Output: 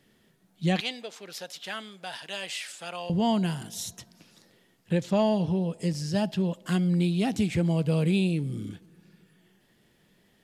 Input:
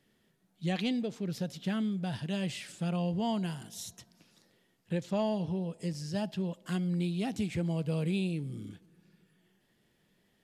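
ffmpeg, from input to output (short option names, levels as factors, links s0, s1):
-filter_complex "[0:a]asettb=1/sr,asplit=3[s0][s1][s2];[s0]atrim=end=0.804[s3];[s1]atrim=start=0.8:end=3.1,asetpts=PTS-STARTPTS,afade=t=in:d=0.004:c=qsin,afade=t=out:st=2.296:d=0.004:c=qsin,highpass=790[s4];[s2]atrim=start=3.096[s5];[s3][s4]acrossfade=d=0.004:c1=hsin:c2=qsin[s6];[s6][s5]acrossfade=d=0.004:c1=qsin:c2=hsin,volume=2.24"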